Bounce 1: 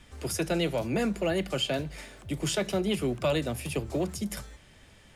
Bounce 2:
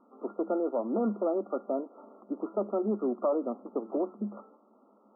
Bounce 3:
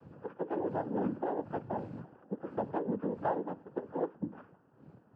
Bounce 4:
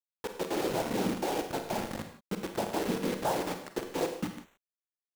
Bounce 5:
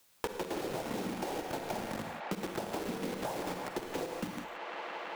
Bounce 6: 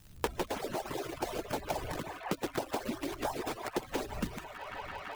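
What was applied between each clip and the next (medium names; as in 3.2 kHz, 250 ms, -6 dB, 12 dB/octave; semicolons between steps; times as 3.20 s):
FFT band-pass 200–1400 Hz
wind noise 200 Hz -43 dBFS; noise-vocoded speech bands 8; trim -4.5 dB
in parallel at -3 dB: compression 10:1, threshold -42 dBFS, peak gain reduction 16 dB; on the sum: bit crusher 6-bit; reverberation, pre-delay 33 ms, DRR 5.5 dB
compression, threshold -34 dBFS, peak gain reduction 9 dB; feedback echo behind a band-pass 168 ms, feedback 78%, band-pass 1.4 kHz, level -7.5 dB; three bands compressed up and down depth 100%
harmonic-percussive separation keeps percussive; wind noise 88 Hz -55 dBFS; crackle 190 per s -49 dBFS; trim +4 dB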